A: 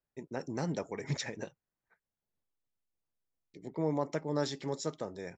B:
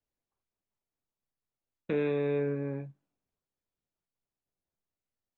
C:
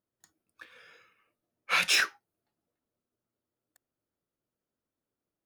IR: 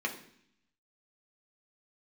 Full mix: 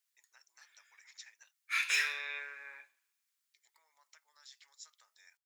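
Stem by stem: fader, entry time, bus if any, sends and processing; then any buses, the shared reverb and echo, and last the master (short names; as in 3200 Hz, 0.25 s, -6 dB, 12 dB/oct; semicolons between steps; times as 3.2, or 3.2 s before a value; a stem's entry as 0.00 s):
-13.0 dB, 0.00 s, no send, compressor 6:1, threshold -39 dBFS, peak gain reduction 12.5 dB
+2.5 dB, 0.00 s, send -16.5 dB, dry
-8.0 dB, 0.00 s, send -8 dB, upward expander 1.5:1, over -44 dBFS; auto duck -9 dB, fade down 0.25 s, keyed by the second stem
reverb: on, RT60 0.65 s, pre-delay 3 ms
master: HPF 1200 Hz 24 dB/oct; high shelf 2200 Hz +10.5 dB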